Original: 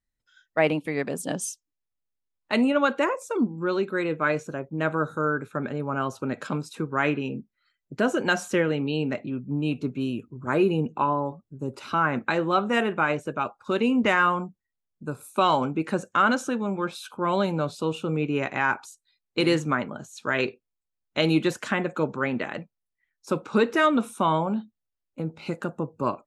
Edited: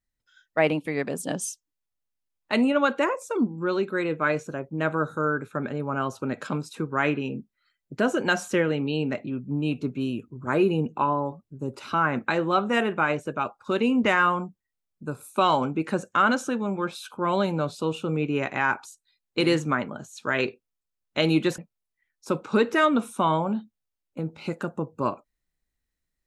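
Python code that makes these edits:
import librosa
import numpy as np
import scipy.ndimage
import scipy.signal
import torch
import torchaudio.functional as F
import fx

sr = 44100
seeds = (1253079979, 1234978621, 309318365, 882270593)

y = fx.edit(x, sr, fx.cut(start_s=21.58, length_s=1.01), tone=tone)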